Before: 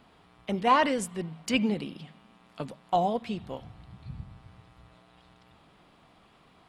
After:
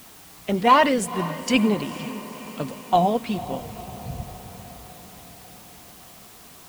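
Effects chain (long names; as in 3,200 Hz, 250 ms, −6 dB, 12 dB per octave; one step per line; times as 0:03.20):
spectral magnitudes quantised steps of 15 dB
feedback delay with all-pass diffusion 488 ms, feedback 61%, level −15 dB
background noise white −55 dBFS
level +7 dB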